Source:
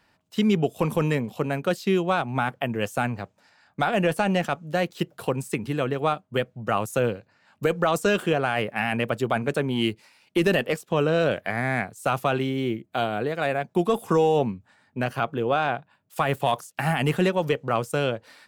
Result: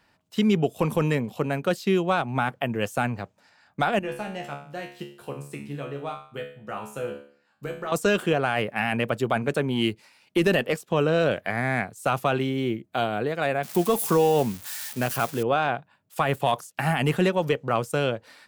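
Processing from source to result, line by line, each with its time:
0:03.99–0:07.92: tuned comb filter 71 Hz, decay 0.48 s, mix 90%
0:13.63–0:15.43: spike at every zero crossing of −24 dBFS

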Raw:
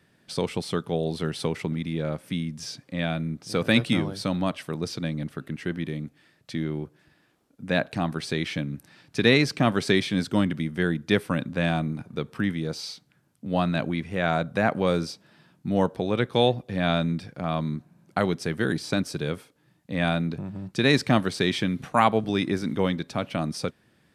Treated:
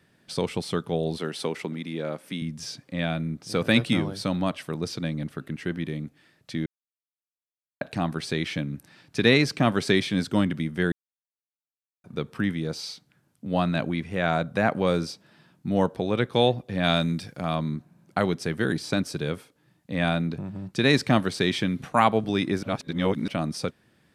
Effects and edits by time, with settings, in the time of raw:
0:01.17–0:02.42: high-pass filter 230 Hz
0:06.66–0:07.81: silence
0:10.92–0:12.04: silence
0:16.83–0:17.55: high-shelf EQ 3,300 Hz → 5,400 Hz +11 dB
0:22.63–0:23.28: reverse

